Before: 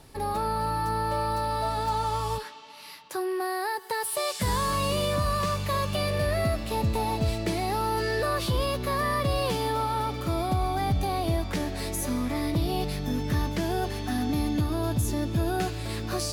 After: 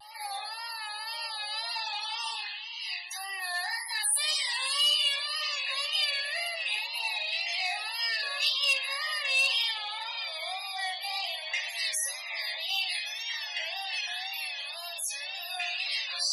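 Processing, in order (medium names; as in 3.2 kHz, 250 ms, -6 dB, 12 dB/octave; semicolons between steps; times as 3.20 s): pre-echo 263 ms -16 dB; peak limiter -21.5 dBFS, peak gain reduction 5.5 dB; flange 0.96 Hz, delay 9.6 ms, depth 9.7 ms, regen -77%; steep high-pass 680 Hz 36 dB/octave; reverberation RT60 0.50 s, pre-delay 4 ms, DRR -2.5 dB; loudest bins only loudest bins 64; resonant high shelf 1.8 kHz +11.5 dB, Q 3; vibrato 1.9 Hz 85 cents; transformer saturation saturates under 3.8 kHz; trim -4 dB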